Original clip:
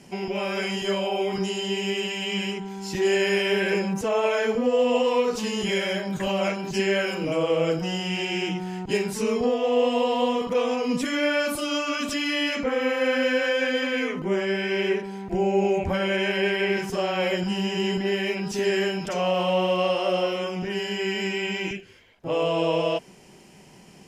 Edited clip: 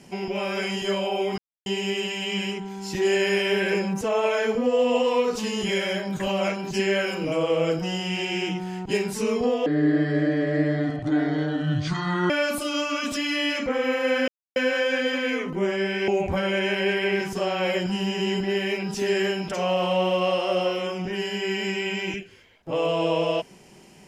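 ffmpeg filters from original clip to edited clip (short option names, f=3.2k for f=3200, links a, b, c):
-filter_complex "[0:a]asplit=7[a][b][c][d][e][f][g];[a]atrim=end=1.38,asetpts=PTS-STARTPTS,afade=t=out:st=1.376:d=0.004:c=hsin[h];[b]atrim=start=1.38:end=1.66,asetpts=PTS-STARTPTS,volume=0[i];[c]atrim=start=1.66:end=9.664,asetpts=PTS-STARTPTS,afade=t=in:d=0.004:c=hsin[j];[d]atrim=start=9.66:end=11.27,asetpts=PTS-STARTPTS,asetrate=26901,aresample=44100,atrim=end_sample=116395,asetpts=PTS-STARTPTS[k];[e]atrim=start=11.266:end=13.25,asetpts=PTS-STARTPTS,afade=t=out:st=1.98:d=0.004:c=hsin,apad=pad_dur=0.28[l];[f]atrim=start=13.25:end=14.772,asetpts=PTS-STARTPTS,afade=t=in:d=0.004:c=hsin[m];[g]atrim=start=15.648[n];[h][i][j]concat=n=3:v=0:a=1[o];[o][k]acrossfade=d=0.004:c1=hsin:c2=hsin[p];[l][m]concat=n=2:v=0:a=1[q];[p][q]acrossfade=d=0.004:c1=hsin:c2=hsin[r];[r][n]acrossfade=d=0.004:c1=hsin:c2=hsin"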